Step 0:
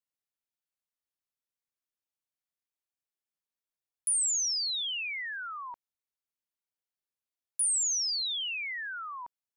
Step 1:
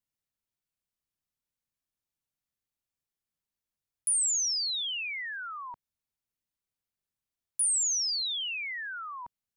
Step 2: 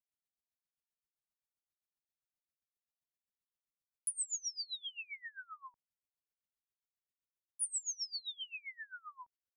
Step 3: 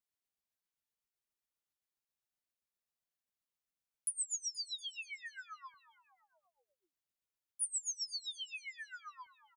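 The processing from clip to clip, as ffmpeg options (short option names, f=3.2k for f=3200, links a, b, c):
-af "bass=f=250:g=11,treble=f=4k:g=1"
-af "aeval=exprs='val(0)*pow(10,-27*(0.5-0.5*cos(2*PI*7.6*n/s))/20)':c=same,volume=-6dB"
-filter_complex "[0:a]asplit=6[a][b][c][d][e][f];[b]adelay=238,afreqshift=-140,volume=-18dB[g];[c]adelay=476,afreqshift=-280,volume=-22.4dB[h];[d]adelay=714,afreqshift=-420,volume=-26.9dB[i];[e]adelay=952,afreqshift=-560,volume=-31.3dB[j];[f]adelay=1190,afreqshift=-700,volume=-35.7dB[k];[a][g][h][i][j][k]amix=inputs=6:normalize=0"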